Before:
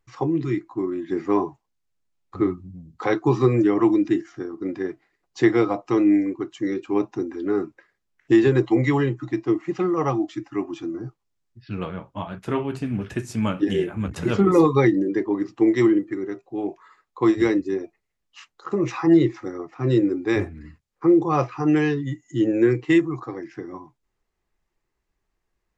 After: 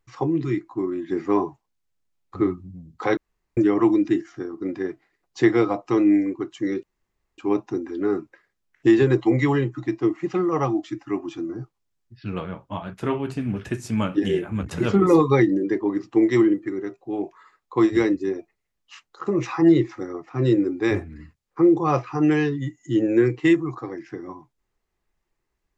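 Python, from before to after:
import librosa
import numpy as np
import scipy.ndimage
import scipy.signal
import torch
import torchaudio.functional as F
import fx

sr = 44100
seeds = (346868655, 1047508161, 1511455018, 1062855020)

y = fx.edit(x, sr, fx.room_tone_fill(start_s=3.17, length_s=0.4),
    fx.insert_room_tone(at_s=6.83, length_s=0.55), tone=tone)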